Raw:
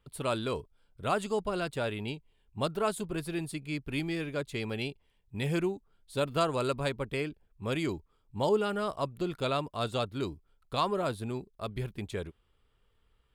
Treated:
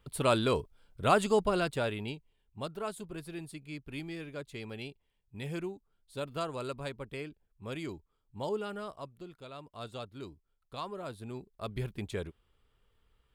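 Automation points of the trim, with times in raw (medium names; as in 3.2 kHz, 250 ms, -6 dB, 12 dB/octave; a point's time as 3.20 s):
1.42 s +4.5 dB
2.63 s -7.5 dB
8.76 s -7.5 dB
9.49 s -17.5 dB
9.77 s -10.5 dB
10.99 s -10.5 dB
11.76 s -0.5 dB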